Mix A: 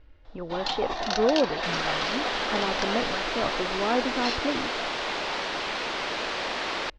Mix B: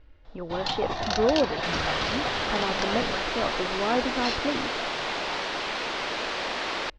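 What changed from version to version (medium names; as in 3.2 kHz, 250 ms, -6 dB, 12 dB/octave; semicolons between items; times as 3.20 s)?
first sound: remove high-pass 260 Hz 12 dB/octave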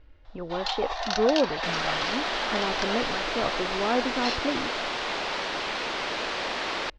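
first sound: add high-pass 590 Hz 24 dB/octave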